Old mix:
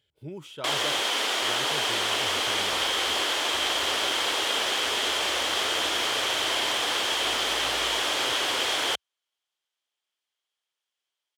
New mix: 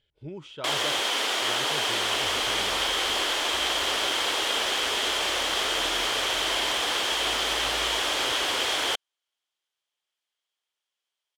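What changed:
speech: add low-pass 5.2 kHz 12 dB/octave; master: remove high-pass 63 Hz 24 dB/octave

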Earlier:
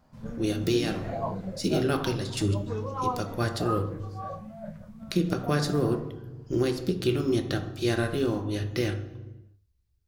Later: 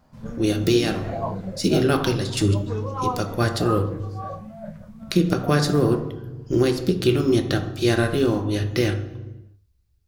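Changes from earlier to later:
speech +6.5 dB; background +3.5 dB

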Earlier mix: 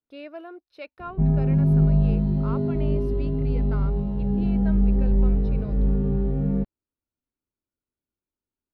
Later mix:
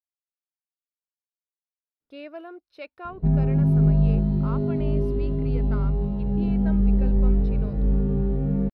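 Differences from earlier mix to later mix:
speech: entry +2.00 s; background: entry +2.05 s

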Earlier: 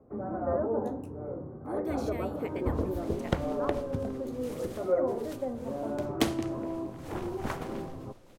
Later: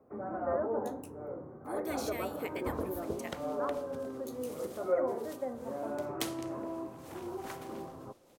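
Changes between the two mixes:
second sound -10.0 dB; master: add tilt EQ +3 dB/octave

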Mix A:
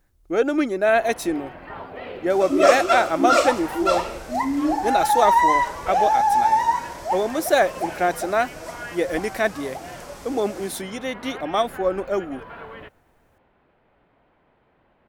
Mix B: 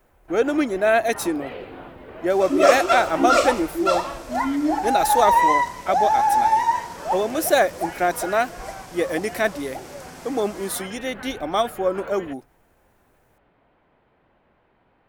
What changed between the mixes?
speech: add treble shelf 7.6 kHz +6.5 dB; first sound: entry -0.55 s

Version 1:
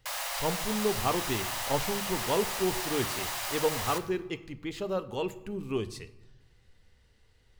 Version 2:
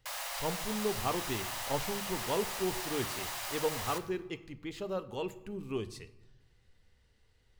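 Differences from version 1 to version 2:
speech -4.5 dB; background -4.5 dB

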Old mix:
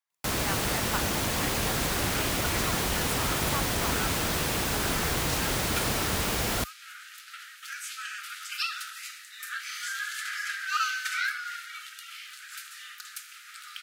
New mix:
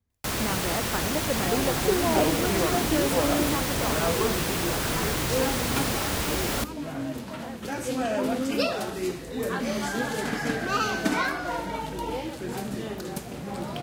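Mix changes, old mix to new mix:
speech: remove steep high-pass 820 Hz; second sound: remove brick-wall FIR high-pass 1.2 kHz

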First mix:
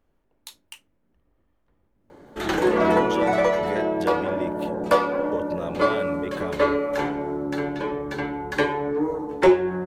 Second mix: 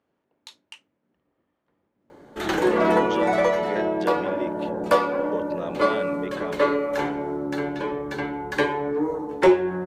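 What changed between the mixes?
speech: add band-pass 140–5600 Hz; master: add bass shelf 85 Hz -6 dB

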